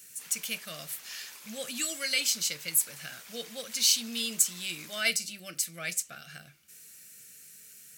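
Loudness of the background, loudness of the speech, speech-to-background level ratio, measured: −46.0 LKFS, −29.0 LKFS, 17.0 dB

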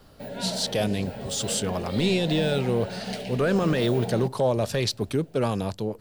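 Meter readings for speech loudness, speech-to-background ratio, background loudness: −26.0 LKFS, 8.0 dB, −34.0 LKFS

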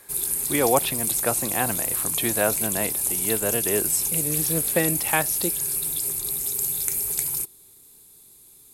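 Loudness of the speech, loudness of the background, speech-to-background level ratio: −27.0 LKFS, −23.0 LKFS, −4.0 dB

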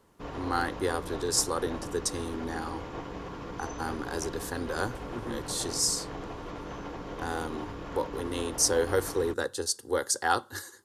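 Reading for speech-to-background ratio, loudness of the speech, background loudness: 9.0 dB, −31.0 LKFS, −40.0 LKFS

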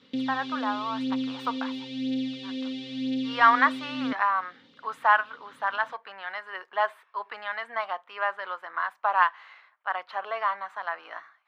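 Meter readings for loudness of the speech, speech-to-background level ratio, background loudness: −28.0 LKFS, 4.5 dB, −32.5 LKFS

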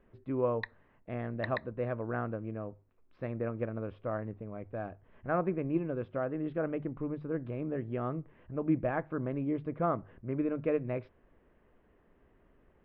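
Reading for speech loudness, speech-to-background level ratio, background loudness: −35.5 LKFS, 8.5 dB, −44.0 LKFS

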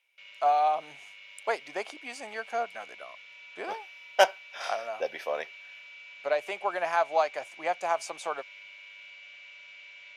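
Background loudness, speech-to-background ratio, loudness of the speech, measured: −46.5 LKFS, 16.0 dB, −30.5 LKFS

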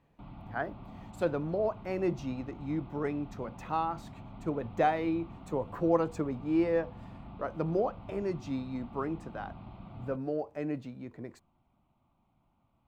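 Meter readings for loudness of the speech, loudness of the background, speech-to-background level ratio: −33.5 LKFS, −48.5 LKFS, 15.0 dB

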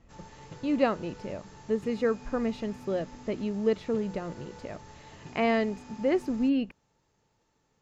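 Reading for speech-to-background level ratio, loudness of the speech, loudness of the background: 18.5 dB, −30.0 LKFS, −48.5 LKFS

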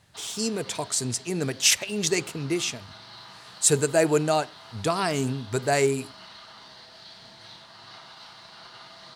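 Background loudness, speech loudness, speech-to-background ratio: −45.0 LKFS, −25.0 LKFS, 20.0 dB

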